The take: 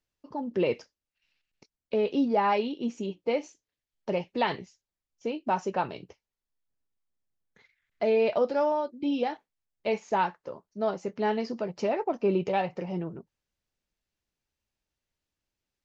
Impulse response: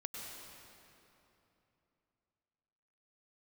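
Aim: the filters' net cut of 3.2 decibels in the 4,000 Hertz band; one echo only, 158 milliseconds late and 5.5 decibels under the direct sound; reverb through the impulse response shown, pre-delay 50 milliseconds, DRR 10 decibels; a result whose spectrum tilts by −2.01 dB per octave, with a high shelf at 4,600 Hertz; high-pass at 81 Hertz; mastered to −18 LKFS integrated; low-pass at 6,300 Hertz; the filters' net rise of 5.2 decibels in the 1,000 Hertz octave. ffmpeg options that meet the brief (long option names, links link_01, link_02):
-filter_complex "[0:a]highpass=81,lowpass=6300,equalizer=frequency=1000:width_type=o:gain=6.5,equalizer=frequency=4000:width_type=o:gain=-7.5,highshelf=frequency=4600:gain=5,aecho=1:1:158:0.531,asplit=2[link_01][link_02];[1:a]atrim=start_sample=2205,adelay=50[link_03];[link_02][link_03]afir=irnorm=-1:irlink=0,volume=-9dB[link_04];[link_01][link_04]amix=inputs=2:normalize=0,volume=8dB"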